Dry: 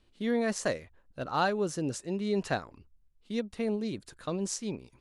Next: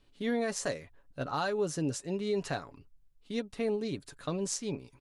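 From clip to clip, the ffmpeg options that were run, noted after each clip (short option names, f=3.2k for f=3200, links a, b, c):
-filter_complex "[0:a]aecho=1:1:7.1:0.41,acrossover=split=4600[a][b];[a]alimiter=limit=-22.5dB:level=0:latency=1:release=151[c];[c][b]amix=inputs=2:normalize=0"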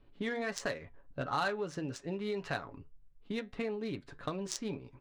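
-filter_complex "[0:a]acrossover=split=1100[a][b];[a]acompressor=threshold=-39dB:ratio=6[c];[c][b]amix=inputs=2:normalize=0,flanger=delay=8.6:depth=2.1:regen=-72:speed=1.6:shape=triangular,adynamicsmooth=sensitivity=8:basefreq=2.1k,volume=8.5dB"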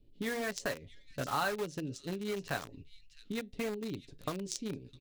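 -filter_complex "[0:a]acrossover=split=530|2900[a][b][c];[b]acrusher=bits=6:mix=0:aa=0.000001[d];[c]aecho=1:1:658:0.355[e];[a][d][e]amix=inputs=3:normalize=0"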